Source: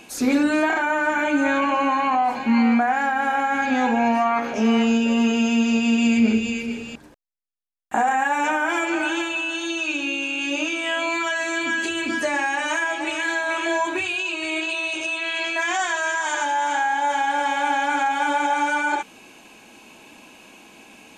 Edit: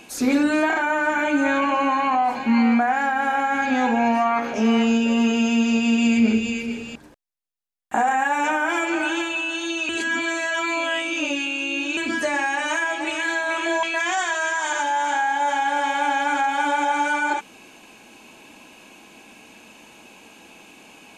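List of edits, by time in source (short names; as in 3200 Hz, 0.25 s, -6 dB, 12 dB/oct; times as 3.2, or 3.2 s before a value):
9.89–11.97 reverse
13.83–15.45 cut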